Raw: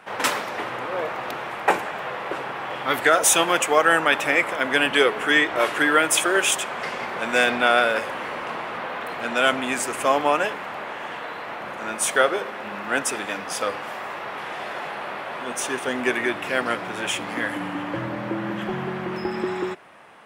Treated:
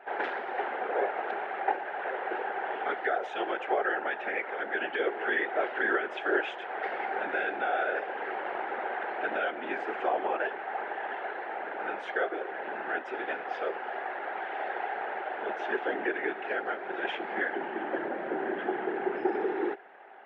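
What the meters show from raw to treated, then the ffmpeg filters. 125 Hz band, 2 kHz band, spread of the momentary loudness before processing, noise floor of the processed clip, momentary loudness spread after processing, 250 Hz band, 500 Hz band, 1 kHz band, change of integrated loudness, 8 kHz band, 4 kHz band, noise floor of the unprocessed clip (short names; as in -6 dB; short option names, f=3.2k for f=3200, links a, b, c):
under -20 dB, -9.0 dB, 14 LU, -40 dBFS, 6 LU, -9.0 dB, -7.0 dB, -7.0 dB, -9.0 dB, under -40 dB, -18.5 dB, -34 dBFS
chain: -af "alimiter=limit=-14.5dB:level=0:latency=1:release=345,afftfilt=real='hypot(re,im)*cos(2*PI*random(0))':imag='hypot(re,im)*sin(2*PI*random(1))':win_size=512:overlap=0.75,highpass=f=260:w=0.5412,highpass=f=260:w=1.3066,equalizer=f=270:t=q:w=4:g=-5,equalizer=f=390:t=q:w=4:g=8,equalizer=f=780:t=q:w=4:g=10,equalizer=f=1.1k:t=q:w=4:g=-9,equalizer=f=1.6k:t=q:w=4:g=6,equalizer=f=2.5k:t=q:w=4:g=-4,lowpass=f=2.8k:w=0.5412,lowpass=f=2.8k:w=1.3066"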